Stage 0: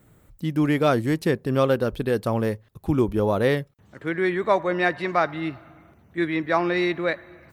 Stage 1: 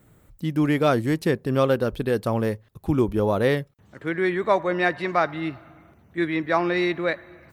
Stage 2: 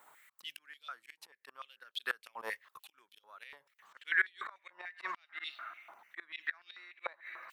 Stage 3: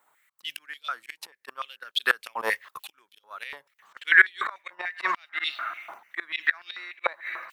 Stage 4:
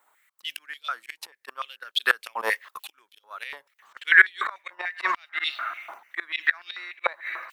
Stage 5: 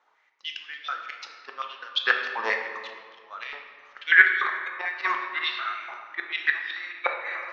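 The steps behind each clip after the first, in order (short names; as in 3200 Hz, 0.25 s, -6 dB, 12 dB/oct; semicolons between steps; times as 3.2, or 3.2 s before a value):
nothing audible
flipped gate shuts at -14 dBFS, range -27 dB; auto swell 0.145 s; stepped high-pass 6.8 Hz 930–3500 Hz; gain -1 dB
gate -57 dBFS, range -9 dB; AGC gain up to 10 dB; gain +3.5 dB
bell 120 Hz -10 dB 1.7 oct; gain +1.5 dB
steep low-pass 6300 Hz 72 dB/oct; reverb RT60 1.9 s, pre-delay 3 ms, DRR 2 dB; gain -1.5 dB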